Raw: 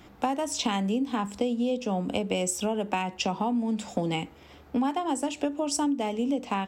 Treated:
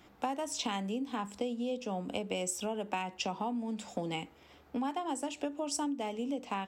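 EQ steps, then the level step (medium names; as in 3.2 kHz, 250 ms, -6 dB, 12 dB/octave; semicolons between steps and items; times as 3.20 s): bass shelf 250 Hz -5.5 dB; -6.0 dB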